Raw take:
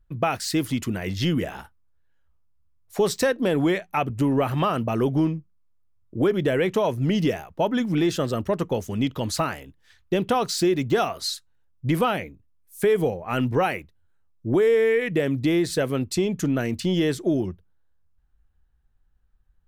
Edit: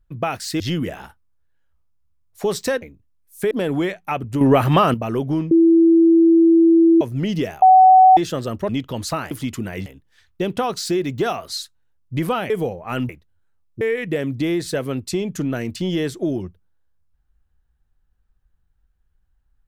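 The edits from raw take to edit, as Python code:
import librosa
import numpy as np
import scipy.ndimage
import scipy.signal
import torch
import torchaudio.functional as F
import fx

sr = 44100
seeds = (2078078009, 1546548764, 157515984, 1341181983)

y = fx.edit(x, sr, fx.move(start_s=0.6, length_s=0.55, to_s=9.58),
    fx.clip_gain(start_s=4.27, length_s=0.53, db=8.0),
    fx.bleep(start_s=5.37, length_s=1.5, hz=331.0, db=-9.0),
    fx.bleep(start_s=7.48, length_s=0.55, hz=751.0, db=-6.0),
    fx.cut(start_s=8.55, length_s=0.41),
    fx.move(start_s=12.22, length_s=0.69, to_s=3.37),
    fx.cut(start_s=13.5, length_s=0.26),
    fx.cut(start_s=14.48, length_s=0.37), tone=tone)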